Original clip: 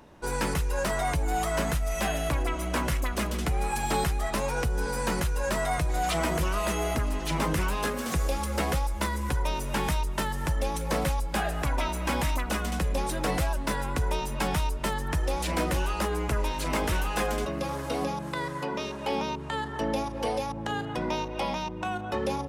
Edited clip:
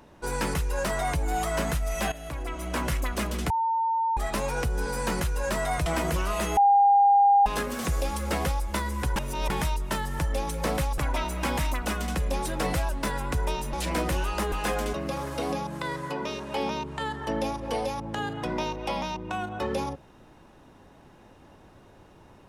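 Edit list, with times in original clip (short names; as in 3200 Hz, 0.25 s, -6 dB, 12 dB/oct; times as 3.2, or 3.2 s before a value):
2.12–2.89 fade in, from -14 dB
3.5–4.17 bleep 905 Hz -22.5 dBFS
5.86–6.13 cut
6.84–7.73 bleep 805 Hz -15 dBFS
9.43–9.77 reverse
11.25–11.62 cut
14.37–15.35 cut
16.14–17.04 cut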